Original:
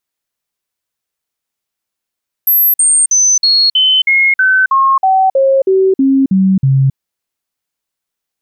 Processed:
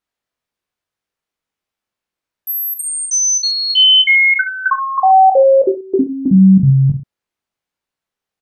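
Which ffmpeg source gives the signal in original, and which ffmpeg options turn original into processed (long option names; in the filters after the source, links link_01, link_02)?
-f lavfi -i "aevalsrc='0.473*clip(min(mod(t,0.32),0.27-mod(t,0.32))/0.005,0,1)*sin(2*PI*12200*pow(2,-floor(t/0.32)/2)*mod(t,0.32))':duration=4.48:sample_rate=44100"
-filter_complex "[0:a]lowpass=frequency=2400:poles=1,asplit=2[link_01][link_02];[link_02]aecho=0:1:20|43|69.45|99.87|134.8:0.631|0.398|0.251|0.158|0.1[link_03];[link_01][link_03]amix=inputs=2:normalize=0"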